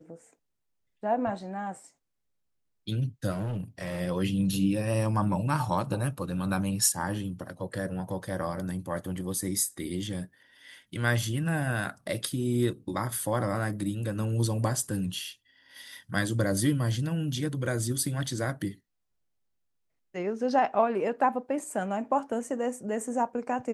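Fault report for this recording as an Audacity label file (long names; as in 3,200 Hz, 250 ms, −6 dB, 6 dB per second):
3.320000	4.010000	clipping −29 dBFS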